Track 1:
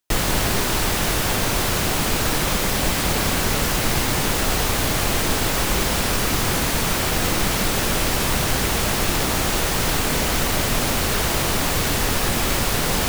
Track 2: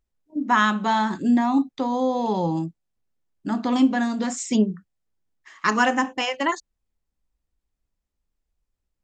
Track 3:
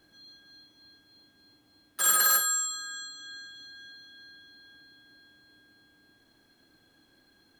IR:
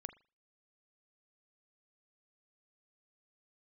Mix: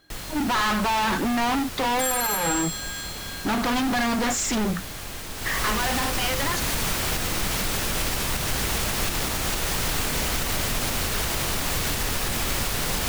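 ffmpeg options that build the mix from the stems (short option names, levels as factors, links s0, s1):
-filter_complex "[0:a]volume=0.944,afade=t=in:st=5.34:d=0.55:silence=0.223872[s0];[1:a]asplit=2[s1][s2];[s2]highpass=f=720:p=1,volume=39.8,asoftclip=type=tanh:threshold=0.447[s3];[s1][s3]amix=inputs=2:normalize=0,lowpass=f=1800:p=1,volume=0.501,asoftclip=type=tanh:threshold=0.106,volume=1.06,asplit=2[s4][s5];[2:a]volume=1.26,asplit=2[s6][s7];[s7]volume=0.708[s8];[s5]apad=whole_len=334923[s9];[s6][s9]sidechaincompress=threshold=0.0501:ratio=8:attack=16:release=390[s10];[3:a]atrim=start_sample=2205[s11];[s8][s11]afir=irnorm=-1:irlink=0[s12];[s0][s4][s10][s12]amix=inputs=4:normalize=0,equalizer=f=360:w=0.32:g=-4,alimiter=limit=0.178:level=0:latency=1:release=157"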